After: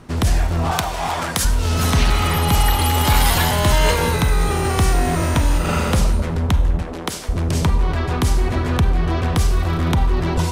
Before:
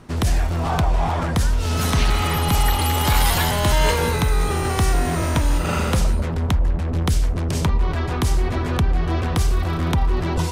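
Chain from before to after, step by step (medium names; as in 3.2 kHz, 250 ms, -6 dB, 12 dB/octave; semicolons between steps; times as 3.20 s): 0.71–1.45 s: tilt EQ +3 dB/octave; 6.82–7.29 s: high-pass 310 Hz 12 dB/octave; Schroeder reverb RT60 0.76 s, combs from 32 ms, DRR 11.5 dB; trim +2 dB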